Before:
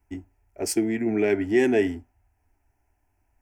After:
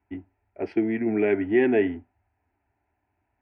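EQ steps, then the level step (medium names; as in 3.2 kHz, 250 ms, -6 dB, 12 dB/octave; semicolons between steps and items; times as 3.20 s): high-pass 100 Hz 12 dB/octave; inverse Chebyshev low-pass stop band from 6.8 kHz, stop band 50 dB; 0.0 dB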